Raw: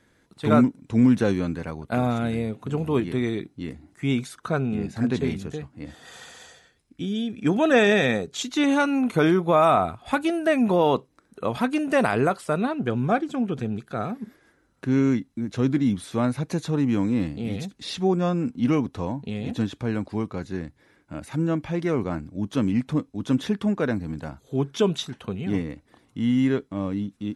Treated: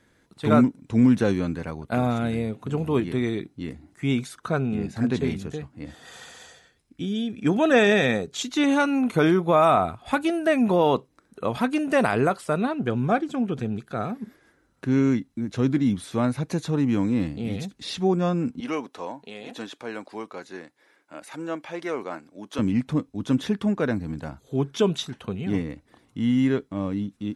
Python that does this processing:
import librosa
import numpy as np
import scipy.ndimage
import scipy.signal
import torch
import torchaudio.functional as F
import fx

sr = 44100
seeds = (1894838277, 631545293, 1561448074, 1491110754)

y = fx.highpass(x, sr, hz=470.0, slope=12, at=(18.6, 22.59))